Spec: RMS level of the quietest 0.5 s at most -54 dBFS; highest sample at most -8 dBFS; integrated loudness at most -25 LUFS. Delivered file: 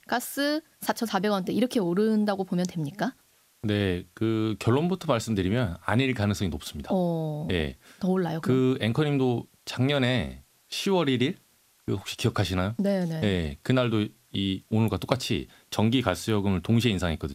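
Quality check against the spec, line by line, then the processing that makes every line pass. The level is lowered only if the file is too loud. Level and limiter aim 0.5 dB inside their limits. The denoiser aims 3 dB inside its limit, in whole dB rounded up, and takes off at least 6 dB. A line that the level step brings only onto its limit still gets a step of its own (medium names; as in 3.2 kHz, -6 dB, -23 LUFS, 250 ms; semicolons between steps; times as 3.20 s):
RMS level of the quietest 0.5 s -63 dBFS: pass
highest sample -6.0 dBFS: fail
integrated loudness -27.0 LUFS: pass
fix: peak limiter -8.5 dBFS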